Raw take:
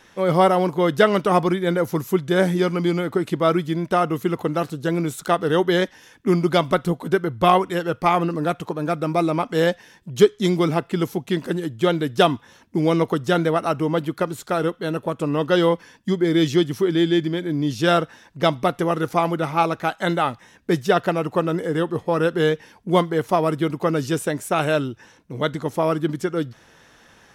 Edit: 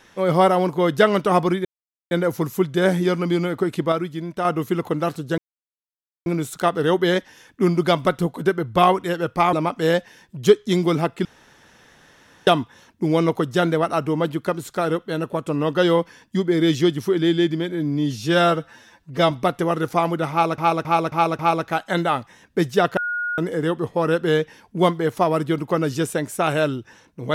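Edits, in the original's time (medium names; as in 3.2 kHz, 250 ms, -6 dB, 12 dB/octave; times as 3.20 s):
1.65 s: insert silence 0.46 s
3.46–3.99 s: gain -5.5 dB
4.92 s: insert silence 0.88 s
8.19–9.26 s: delete
10.98–12.20 s: room tone
17.45–18.51 s: stretch 1.5×
19.51–19.78 s: loop, 5 plays
21.09–21.50 s: bleep 1.44 kHz -22 dBFS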